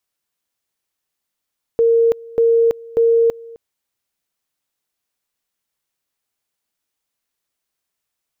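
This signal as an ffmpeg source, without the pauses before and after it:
-f lavfi -i "aevalsrc='pow(10,(-10-23*gte(mod(t,0.59),0.33))/20)*sin(2*PI*461*t)':d=1.77:s=44100"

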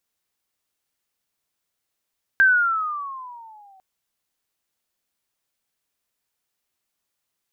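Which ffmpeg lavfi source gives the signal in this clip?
-f lavfi -i "aevalsrc='pow(10,(-10.5-38.5*t/1.4)/20)*sin(2*PI*1590*1.4/(-13*log(2)/12)*(exp(-13*log(2)/12*t/1.4)-1))':d=1.4:s=44100"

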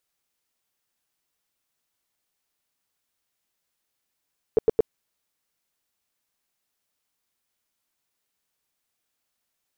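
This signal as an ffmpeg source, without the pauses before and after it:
-f lavfi -i "aevalsrc='0.237*sin(2*PI*445*mod(t,0.11))*lt(mod(t,0.11),7/445)':d=0.33:s=44100"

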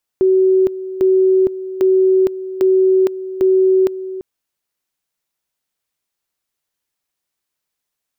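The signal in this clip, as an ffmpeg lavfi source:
-f lavfi -i "aevalsrc='pow(10,(-9-14*gte(mod(t,0.8),0.46))/20)*sin(2*PI*377*t)':d=4:s=44100"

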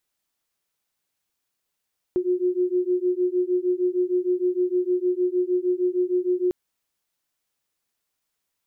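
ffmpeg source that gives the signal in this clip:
-f lavfi -i "aevalsrc='0.0708*(sin(2*PI*358*t)+sin(2*PI*364.5*t))':d=4.35:s=44100"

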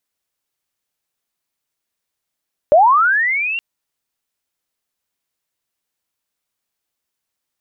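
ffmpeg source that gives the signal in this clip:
-f lavfi -i "aevalsrc='pow(10,(-5.5-13.5*t/0.87)/20)*sin(2*PI*(560*t+2240*t*t/(2*0.87)))':d=0.87:s=44100"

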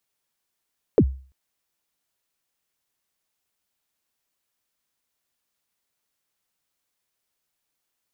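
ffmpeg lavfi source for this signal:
-f lavfi -i "aevalsrc='0.376*pow(10,-3*t/0.4)*sin(2*PI*(530*0.062/log(66/530)*(exp(log(66/530)*min(t,0.062)/0.062)-1)+66*max(t-0.062,0)))':d=0.34:s=44100"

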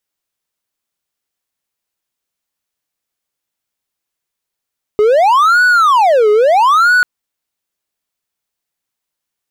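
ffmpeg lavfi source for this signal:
-f lavfi -i "aevalsrc='0.596*(1-4*abs(mod((949*t-531/(2*PI*0.76)*sin(2*PI*0.76*t))+0.25,1)-0.5))':d=2.04:s=44100"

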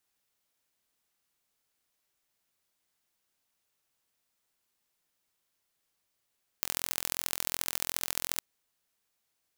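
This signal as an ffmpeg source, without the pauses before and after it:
-f lavfi -i "aevalsrc='0.841*eq(mod(n,1033),0)*(0.5+0.5*eq(mod(n,3099),0))':d=1.76:s=44100"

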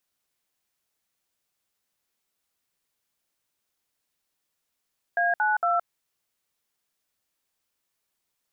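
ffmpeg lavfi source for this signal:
-f lavfi -i "aevalsrc='0.0708*clip(min(mod(t,0.229),0.169-mod(t,0.229))/0.002,0,1)*(eq(floor(t/0.229),0)*(sin(2*PI*697*mod(t,0.229))+sin(2*PI*1633*mod(t,0.229)))+eq(floor(t/0.229),1)*(sin(2*PI*852*mod(t,0.229))+sin(2*PI*1477*mod(t,0.229)))+eq(floor(t/0.229),2)*(sin(2*PI*697*mod(t,0.229))+sin(2*PI*1336*mod(t,0.229))))':d=0.687:s=44100"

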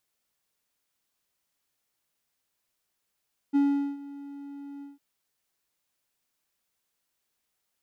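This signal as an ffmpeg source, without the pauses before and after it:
-f lavfi -i "aevalsrc='0.15*(1-4*abs(mod(282*t+0.25,1)-0.5))':d=1.454:s=44100,afade=t=in:d=0.027,afade=t=out:st=0.027:d=0.411:silence=0.1,afade=t=out:st=1.29:d=0.164"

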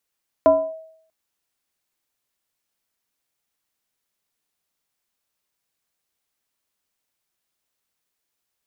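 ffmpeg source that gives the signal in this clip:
-f lavfi -i "aevalsrc='0.422*pow(10,-3*t/0.67)*sin(2*PI*642*t+0.6*clip(1-t/0.28,0,1)*sin(2*PI*0.56*642*t))':d=0.64:s=44100"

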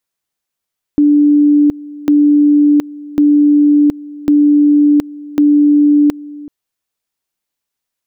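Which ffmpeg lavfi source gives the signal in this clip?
-f lavfi -i "aevalsrc='pow(10,(-5.5-20.5*gte(mod(t,1.1),0.72))/20)*sin(2*PI*293*t)':d=5.5:s=44100"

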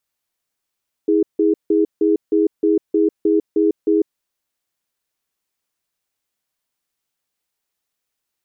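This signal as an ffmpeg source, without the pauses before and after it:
-f lavfi -i "aevalsrc='0.178*(sin(2*PI*322*t)+sin(2*PI*413*t))*clip(min(mod(t,0.31),0.15-mod(t,0.31))/0.005,0,1)':d=3.02:s=44100"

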